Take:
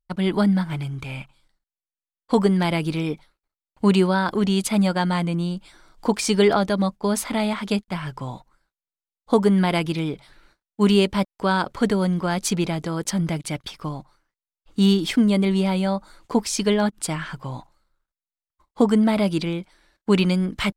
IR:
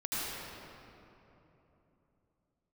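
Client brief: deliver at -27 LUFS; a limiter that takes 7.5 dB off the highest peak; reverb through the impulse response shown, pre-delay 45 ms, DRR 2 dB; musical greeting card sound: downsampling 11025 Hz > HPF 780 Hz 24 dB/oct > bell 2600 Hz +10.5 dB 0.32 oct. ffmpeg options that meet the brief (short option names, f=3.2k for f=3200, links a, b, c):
-filter_complex "[0:a]alimiter=limit=-14dB:level=0:latency=1,asplit=2[a][b];[1:a]atrim=start_sample=2205,adelay=45[c];[b][c]afir=irnorm=-1:irlink=0,volume=-8.5dB[d];[a][d]amix=inputs=2:normalize=0,aresample=11025,aresample=44100,highpass=f=780:w=0.5412,highpass=f=780:w=1.3066,equalizer=f=2.6k:t=o:w=0.32:g=10.5,volume=1.5dB"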